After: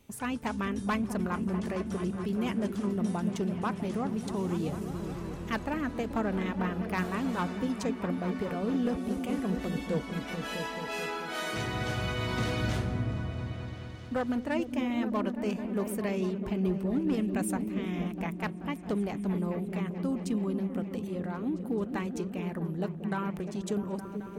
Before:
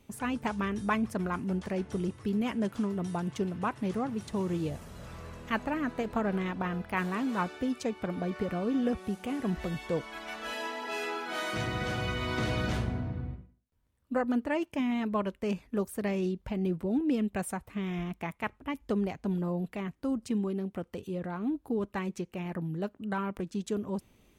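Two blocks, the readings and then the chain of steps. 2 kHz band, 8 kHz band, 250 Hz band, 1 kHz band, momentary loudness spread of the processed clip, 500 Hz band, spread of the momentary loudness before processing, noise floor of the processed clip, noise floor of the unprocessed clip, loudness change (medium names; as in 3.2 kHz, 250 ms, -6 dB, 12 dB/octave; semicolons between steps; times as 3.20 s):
-0.5 dB, +2.5 dB, +1.0 dB, -0.5 dB, 5 LU, 0.0 dB, 7 LU, -41 dBFS, -67 dBFS, +0.5 dB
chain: treble shelf 4.8 kHz +4.5 dB; overload inside the chain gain 23.5 dB; delay with an opening low-pass 217 ms, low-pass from 200 Hz, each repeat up 1 oct, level -3 dB; trim -1 dB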